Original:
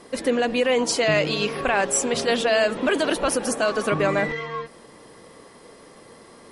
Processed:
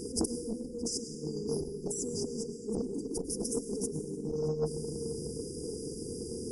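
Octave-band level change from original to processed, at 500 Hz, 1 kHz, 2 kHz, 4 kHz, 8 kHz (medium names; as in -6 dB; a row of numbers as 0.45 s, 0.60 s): -13.0 dB, -27.0 dB, under -40 dB, -16.0 dB, -9.0 dB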